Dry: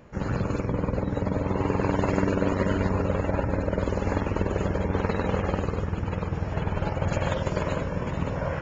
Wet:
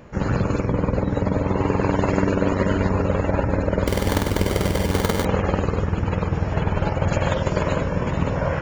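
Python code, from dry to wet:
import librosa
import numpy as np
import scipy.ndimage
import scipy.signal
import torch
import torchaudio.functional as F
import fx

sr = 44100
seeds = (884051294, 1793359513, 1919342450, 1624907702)

p1 = fx.rider(x, sr, range_db=10, speed_s=0.5)
p2 = x + F.gain(torch.from_numpy(p1), -2.0).numpy()
y = fx.sample_hold(p2, sr, seeds[0], rate_hz=2600.0, jitter_pct=0, at=(3.87, 5.25))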